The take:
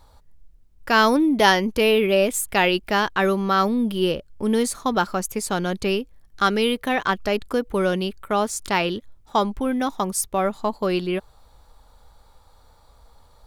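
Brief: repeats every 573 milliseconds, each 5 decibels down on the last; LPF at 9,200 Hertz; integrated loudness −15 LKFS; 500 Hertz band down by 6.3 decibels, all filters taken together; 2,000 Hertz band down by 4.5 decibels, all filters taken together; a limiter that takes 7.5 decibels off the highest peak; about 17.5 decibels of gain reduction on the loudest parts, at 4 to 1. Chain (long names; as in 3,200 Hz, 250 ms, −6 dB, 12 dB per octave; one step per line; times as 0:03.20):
low-pass filter 9,200 Hz
parametric band 500 Hz −8 dB
parametric band 2,000 Hz −5.5 dB
downward compressor 4 to 1, threshold −37 dBFS
brickwall limiter −30 dBFS
repeating echo 573 ms, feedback 56%, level −5 dB
level +24 dB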